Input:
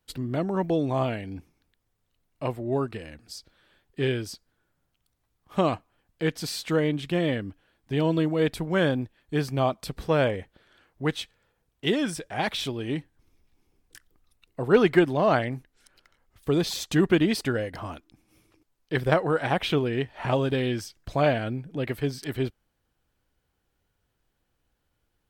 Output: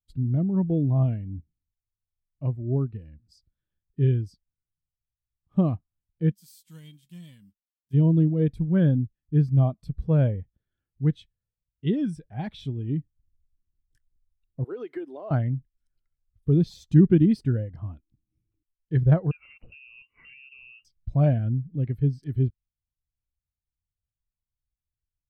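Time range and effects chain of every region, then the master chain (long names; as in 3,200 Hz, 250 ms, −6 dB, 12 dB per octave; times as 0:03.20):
0:06.31–0:07.93: spectral envelope flattened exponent 0.6 + first-order pre-emphasis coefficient 0.9 + hollow resonant body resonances 200/1,000/3,200 Hz, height 10 dB, ringing for 90 ms
0:14.64–0:15.31: high-pass filter 330 Hz 24 dB per octave + high-shelf EQ 3,000 Hz +3.5 dB + downward compressor 16 to 1, threshold −23 dBFS
0:19.31–0:20.85: parametric band 240 Hz +9 dB 2.3 octaves + downward compressor, threshold −34 dBFS + voice inversion scrambler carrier 2,900 Hz
whole clip: bass and treble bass +14 dB, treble +2 dB; every bin expanded away from the loudest bin 1.5 to 1; level −4.5 dB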